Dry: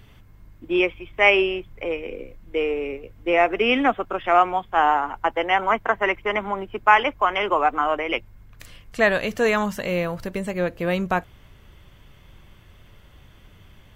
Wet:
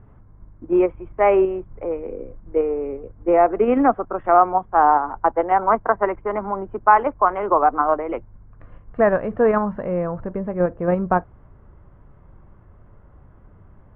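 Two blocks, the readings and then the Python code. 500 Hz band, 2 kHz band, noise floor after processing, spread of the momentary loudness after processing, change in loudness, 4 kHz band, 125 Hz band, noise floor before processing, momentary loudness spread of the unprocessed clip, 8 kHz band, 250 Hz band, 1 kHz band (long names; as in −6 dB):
+4.0 dB, −7.5 dB, −49 dBFS, 12 LU, +2.0 dB, below −25 dB, +3.0 dB, −51 dBFS, 12 LU, can't be measured, +3.5 dB, +3.5 dB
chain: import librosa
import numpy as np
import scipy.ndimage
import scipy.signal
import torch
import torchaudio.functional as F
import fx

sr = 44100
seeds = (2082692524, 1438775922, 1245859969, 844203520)

p1 = scipy.signal.sosfilt(scipy.signal.butter(4, 1300.0, 'lowpass', fs=sr, output='sos'), x)
p2 = fx.level_steps(p1, sr, step_db=22)
p3 = p1 + (p2 * librosa.db_to_amplitude(-3.0))
y = p3 * librosa.db_to_amplitude(1.0)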